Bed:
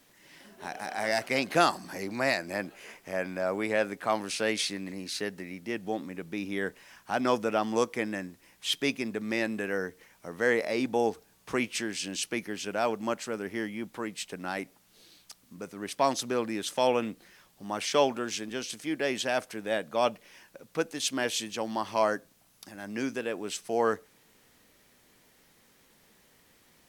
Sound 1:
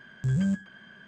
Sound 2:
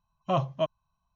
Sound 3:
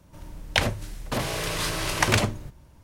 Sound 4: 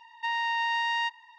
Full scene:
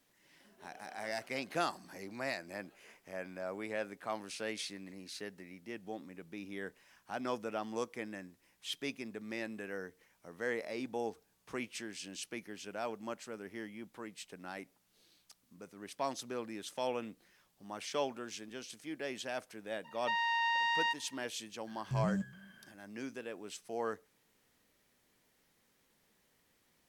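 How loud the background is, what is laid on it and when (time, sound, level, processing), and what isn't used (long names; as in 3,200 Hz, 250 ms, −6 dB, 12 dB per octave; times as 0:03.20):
bed −11 dB
0:19.84: mix in 4 −4 dB
0:21.67: mix in 1 −9 dB + slap from a distant wall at 50 metres, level −23 dB
not used: 2, 3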